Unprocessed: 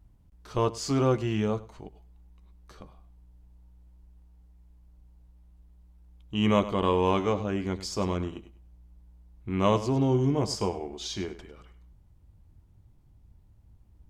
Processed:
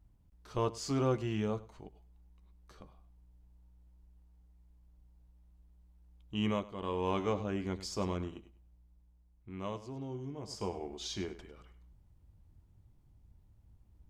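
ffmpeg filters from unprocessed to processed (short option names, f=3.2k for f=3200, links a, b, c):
-af "volume=18dB,afade=t=out:st=6.39:d=0.3:silence=0.266073,afade=t=in:st=6.69:d=0.6:silence=0.251189,afade=t=out:st=8:d=1.77:silence=0.266073,afade=t=in:st=10.42:d=0.43:silence=0.237137"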